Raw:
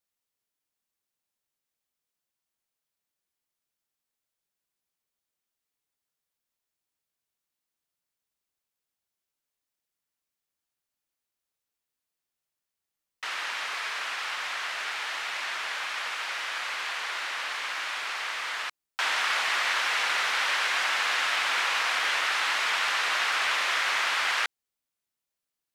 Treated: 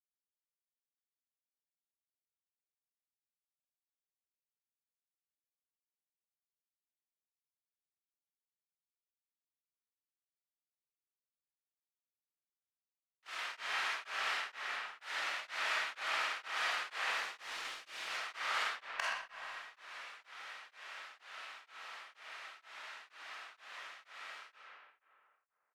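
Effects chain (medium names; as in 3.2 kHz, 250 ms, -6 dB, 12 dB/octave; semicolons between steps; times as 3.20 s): gate -30 dBFS, range -41 dB; 17.02–18.08 s: peaking EQ 1.2 kHz -11.5 dB 2.7 oct; inverted gate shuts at -23 dBFS, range -33 dB; delay 125 ms -9.5 dB; 14.24–15.01 s: fade out; reverberation RT60 2.4 s, pre-delay 5 ms, DRR -9 dB; tremolo of two beating tones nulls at 2.1 Hz; trim +2 dB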